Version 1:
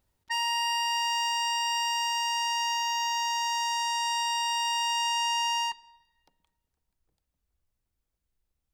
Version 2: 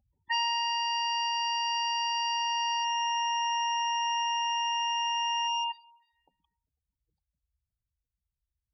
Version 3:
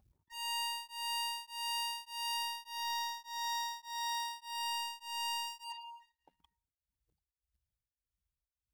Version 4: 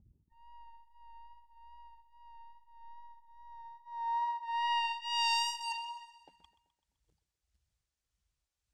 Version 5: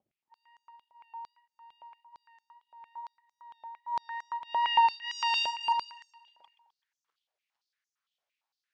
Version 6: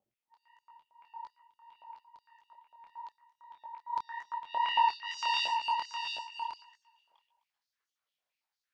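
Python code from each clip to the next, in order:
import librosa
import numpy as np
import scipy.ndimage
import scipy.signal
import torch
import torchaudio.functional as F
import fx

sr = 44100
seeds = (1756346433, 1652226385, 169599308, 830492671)

y1 = scipy.signal.sosfilt(scipy.signal.butter(2, 41.0, 'highpass', fs=sr, output='sos'), x)
y1 = fx.spec_gate(y1, sr, threshold_db=-10, keep='strong')
y1 = fx.rider(y1, sr, range_db=10, speed_s=0.5)
y2 = 10.0 ** (-37.0 / 20.0) * np.tanh(y1 / 10.0 ** (-37.0 / 20.0))
y2 = fx.leveller(y2, sr, passes=2)
y2 = y2 * np.abs(np.cos(np.pi * 1.7 * np.arange(len(y2)) / sr))
y2 = F.gain(torch.from_numpy(y2), 2.0).numpy()
y3 = fx.vibrato(y2, sr, rate_hz=2.4, depth_cents=20.0)
y3 = fx.filter_sweep_lowpass(y3, sr, from_hz=270.0, to_hz=7400.0, start_s=3.48, end_s=5.49, q=1.2)
y3 = fx.echo_feedback(y3, sr, ms=128, feedback_pct=58, wet_db=-16)
y3 = F.gain(torch.from_numpy(y3), 6.0).numpy()
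y4 = fx.vibrato(y3, sr, rate_hz=1.6, depth_cents=15.0)
y4 = fx.air_absorb(y4, sr, metres=150.0)
y4 = fx.filter_held_highpass(y4, sr, hz=8.8, low_hz=630.0, high_hz=6300.0)
y4 = F.gain(torch.from_numpy(y4), 2.5).numpy()
y5 = y4 + 10.0 ** (-6.5 / 20.0) * np.pad(y4, (int(712 * sr / 1000.0), 0))[:len(y4)]
y5 = fx.detune_double(y5, sr, cents=56)
y5 = F.gain(torch.from_numpy(y5), 1.0).numpy()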